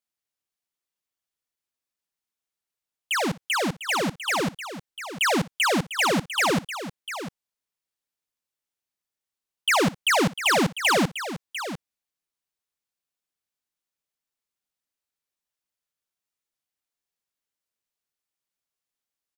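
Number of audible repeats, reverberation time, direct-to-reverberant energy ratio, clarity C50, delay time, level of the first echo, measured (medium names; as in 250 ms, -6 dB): 2, no reverb, no reverb, no reverb, 60 ms, -19.5 dB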